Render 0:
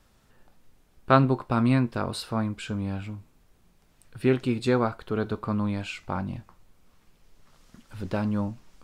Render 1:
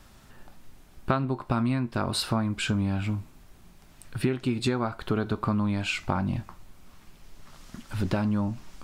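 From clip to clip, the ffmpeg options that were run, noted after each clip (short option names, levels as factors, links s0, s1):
-af "equalizer=f=480:t=o:w=0.2:g=-9.5,acompressor=threshold=0.0282:ratio=16,volume=2.82"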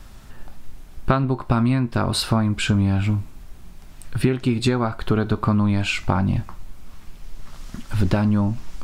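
-af "lowshelf=f=73:g=10.5,volume=1.88"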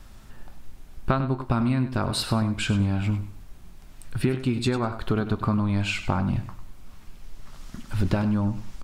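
-af "aecho=1:1:99|198|297:0.251|0.0578|0.0133,volume=0.596"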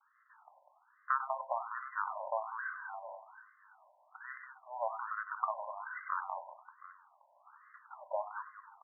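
-af "aecho=1:1:95|196|722:0.119|0.422|0.158,agate=range=0.0224:threshold=0.0126:ratio=3:detection=peak,afftfilt=real='re*between(b*sr/1024,730*pow(1500/730,0.5+0.5*sin(2*PI*1.2*pts/sr))/1.41,730*pow(1500/730,0.5+0.5*sin(2*PI*1.2*pts/sr))*1.41)':imag='im*between(b*sr/1024,730*pow(1500/730,0.5+0.5*sin(2*PI*1.2*pts/sr))/1.41,730*pow(1500/730,0.5+0.5*sin(2*PI*1.2*pts/sr))*1.41)':win_size=1024:overlap=0.75,volume=0.75"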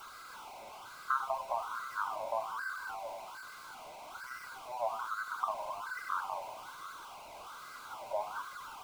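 -af "aeval=exprs='val(0)+0.5*0.00668*sgn(val(0))':c=same,flanger=delay=0.7:depth=8.6:regen=67:speed=0.69:shape=sinusoidal,asuperstop=centerf=1800:order=8:qfactor=5.2,volume=1.58"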